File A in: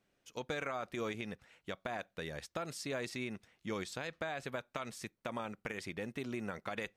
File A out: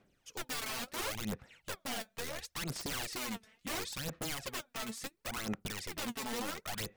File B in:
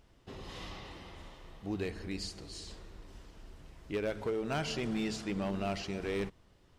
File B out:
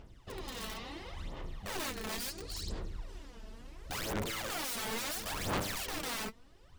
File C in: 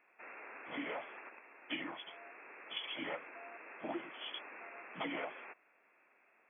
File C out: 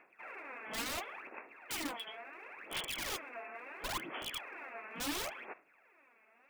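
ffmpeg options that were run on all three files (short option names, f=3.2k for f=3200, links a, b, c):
-af "aeval=exprs='(mod(66.8*val(0)+1,2)-1)/66.8':c=same,aphaser=in_gain=1:out_gain=1:delay=4.6:decay=0.67:speed=0.72:type=sinusoidal,volume=1dB"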